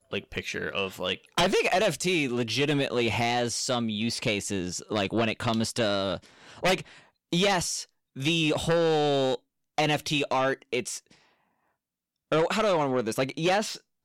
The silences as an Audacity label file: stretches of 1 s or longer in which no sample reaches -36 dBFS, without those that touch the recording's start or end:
10.990000	12.320000	silence